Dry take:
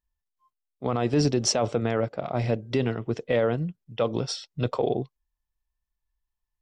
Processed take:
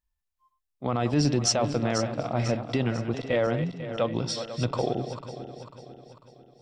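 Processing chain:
feedback delay that plays each chunk backwards 248 ms, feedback 67%, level −10 dB
parametric band 430 Hz −7 dB 0.32 octaves

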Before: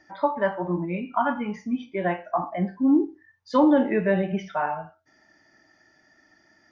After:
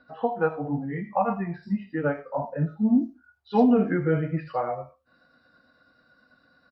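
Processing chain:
pitch shift by two crossfaded delay taps −3.5 semitones
multiband delay without the direct sound lows, highs 80 ms, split 4,200 Hz

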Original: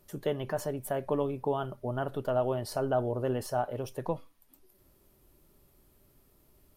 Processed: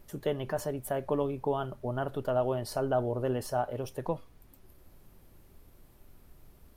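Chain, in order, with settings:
background noise brown −55 dBFS

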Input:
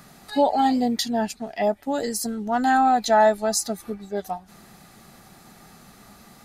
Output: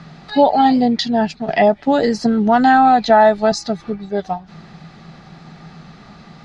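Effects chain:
low-pass filter 4,800 Hz 24 dB per octave
parametric band 160 Hz +14 dB 0.21 octaves
0:01.48–0:03.52: multiband upward and downward compressor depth 70%
level +7 dB

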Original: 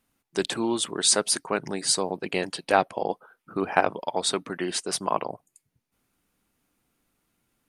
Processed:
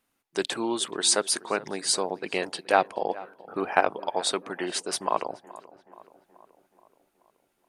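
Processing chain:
bass and treble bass −9 dB, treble −2 dB
feedback echo with a low-pass in the loop 427 ms, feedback 58%, low-pass 2,300 Hz, level −18.5 dB

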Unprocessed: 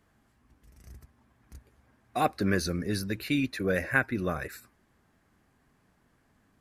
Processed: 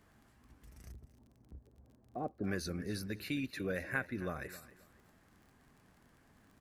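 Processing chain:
0:00.92–0:02.44: Chebyshev low-pass filter 510 Hz, order 2
downward compressor 1.5 to 1, threshold −56 dBFS, peak gain reduction 13 dB
surface crackle 29 per second −55 dBFS
repeating echo 267 ms, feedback 27%, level −17 dB
level +1.5 dB

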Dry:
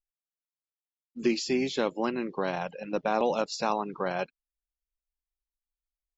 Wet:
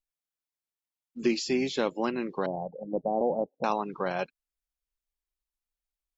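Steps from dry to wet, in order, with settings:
0:02.46–0:03.64: Butterworth low-pass 820 Hz 48 dB per octave

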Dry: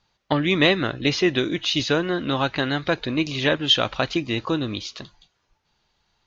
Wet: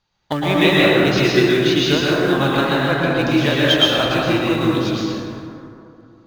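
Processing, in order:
in parallel at −8.5 dB: log-companded quantiser 4 bits
0:02.74–0:03.19: on the sum: high-shelf EQ 6,400 Hz −8.5 dB
dense smooth reverb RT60 2.7 s, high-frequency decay 0.4×, pre-delay 100 ms, DRR −6.5 dB
level −4 dB

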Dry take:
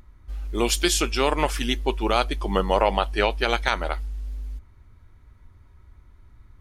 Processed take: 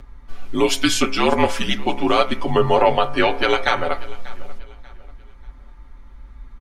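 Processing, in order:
high-shelf EQ 6,700 Hz −11.5 dB
comb filter 6.5 ms, depth 72%
hum removal 64.99 Hz, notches 38
in parallel at +1.5 dB: downward compressor, threshold −33 dBFS, peak gain reduction 18 dB
on the sum: frequency shifter −55 Hz
repeating echo 589 ms, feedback 32%, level −20 dB
on a send at −17.5 dB: convolution reverb, pre-delay 3 ms
on the sum: level +2 dB

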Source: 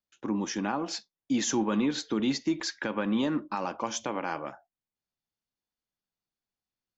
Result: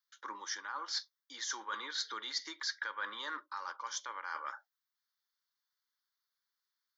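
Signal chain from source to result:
high-pass filter 700 Hz 24 dB per octave
reversed playback
downward compressor, threshold −41 dBFS, peak gain reduction 13 dB
reversed playback
phaser with its sweep stopped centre 2,600 Hz, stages 6
level +7.5 dB

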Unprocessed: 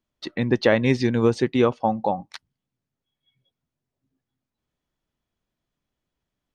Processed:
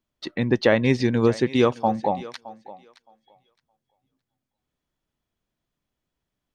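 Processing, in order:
0:01.49–0:01.98: high-shelf EQ 4,700 Hz +11.5 dB
feedback echo with a high-pass in the loop 617 ms, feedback 17%, high-pass 320 Hz, level −17 dB

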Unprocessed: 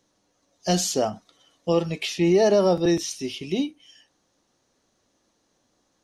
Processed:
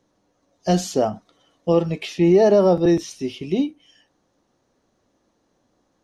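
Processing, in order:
high-shelf EQ 2,100 Hz −11 dB
level +4.5 dB

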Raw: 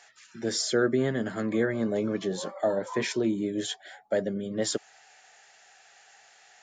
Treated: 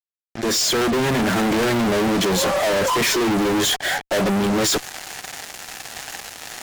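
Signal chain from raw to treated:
fade in at the beginning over 1.61 s
fuzz pedal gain 53 dB, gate −53 dBFS
level −5 dB

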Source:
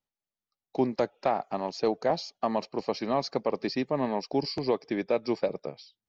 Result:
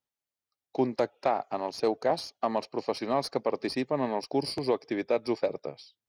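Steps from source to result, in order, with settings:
stylus tracing distortion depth 0.03 ms
high-pass filter 55 Hz
parametric band 190 Hz −8.5 dB 0.34 octaves

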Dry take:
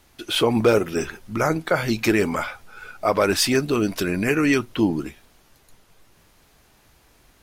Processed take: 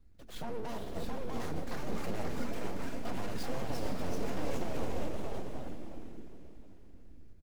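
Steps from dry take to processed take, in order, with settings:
running median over 15 samples
guitar amp tone stack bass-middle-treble 10-0-1
mains-hum notches 50/100/150/200/250 Hz
comb filter 4.2 ms, depth 77%
brickwall limiter −35.5 dBFS, peak gain reduction 9.5 dB
on a send: feedback delay with all-pass diffusion 464 ms, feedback 46%, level −6 dB
on the sum: full-wave rectification
delay with pitch and tempo change per echo 717 ms, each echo +2 semitones, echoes 3
level +7 dB

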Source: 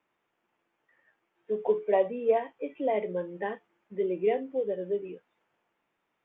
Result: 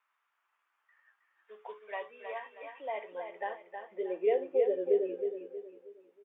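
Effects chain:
dynamic equaliser 890 Hz, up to −5 dB, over −37 dBFS, Q 1.1
high-pass filter sweep 1,200 Hz → 270 Hz, 0:02.30–0:05.81
repeating echo 317 ms, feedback 37%, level −7 dB
level −4 dB

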